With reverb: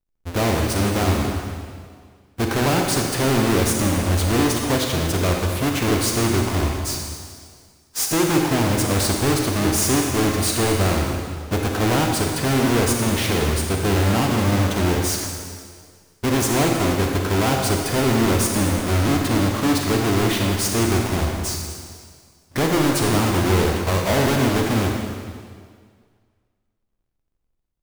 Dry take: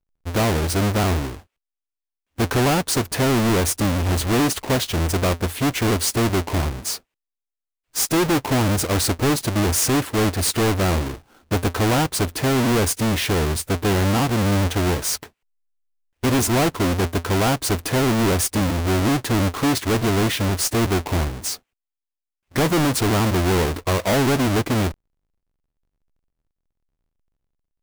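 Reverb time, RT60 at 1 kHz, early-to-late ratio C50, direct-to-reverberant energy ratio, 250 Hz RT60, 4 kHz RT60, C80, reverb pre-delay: 1.9 s, 1.9 s, 2.0 dB, 1.0 dB, 1.9 s, 1.8 s, 3.5 dB, 28 ms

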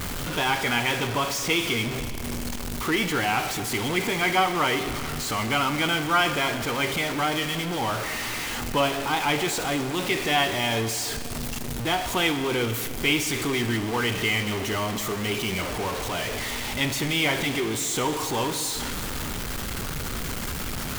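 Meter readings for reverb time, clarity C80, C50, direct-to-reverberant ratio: 2.7 s, 10.5 dB, 10.0 dB, 9.0 dB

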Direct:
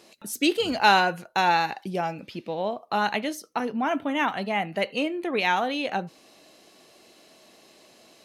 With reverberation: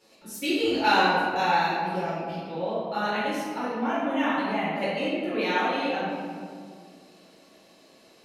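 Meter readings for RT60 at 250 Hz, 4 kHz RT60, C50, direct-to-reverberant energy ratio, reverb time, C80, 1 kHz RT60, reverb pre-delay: 2.9 s, 1.2 s, -2.5 dB, -11.5 dB, 2.0 s, 0.0 dB, 1.8 s, 3 ms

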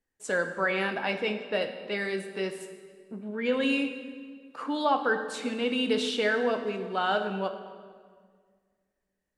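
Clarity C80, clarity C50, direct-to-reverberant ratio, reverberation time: 10.0 dB, 8.5 dB, 7.0 dB, 1.8 s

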